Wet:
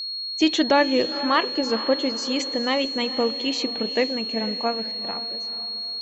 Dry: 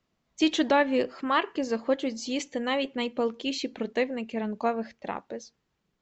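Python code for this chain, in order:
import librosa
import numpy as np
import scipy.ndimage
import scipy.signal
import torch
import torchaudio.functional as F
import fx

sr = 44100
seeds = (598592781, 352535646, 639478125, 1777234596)

y = fx.fade_out_tail(x, sr, length_s=1.77)
y = fx.echo_diffused(y, sr, ms=457, feedback_pct=42, wet_db=-13.0)
y = y + 10.0 ** (-32.0 / 20.0) * np.sin(2.0 * np.pi * 4300.0 * np.arange(len(y)) / sr)
y = F.gain(torch.from_numpy(y), 4.0).numpy()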